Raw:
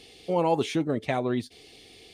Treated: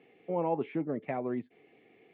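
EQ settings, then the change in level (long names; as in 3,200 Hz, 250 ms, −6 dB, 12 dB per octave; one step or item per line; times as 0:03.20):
high-pass filter 140 Hz 24 dB per octave
Butterworth low-pass 2,300 Hz 36 dB per octave
dynamic equaliser 1,500 Hz, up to −5 dB, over −44 dBFS, Q 1.6
−6.0 dB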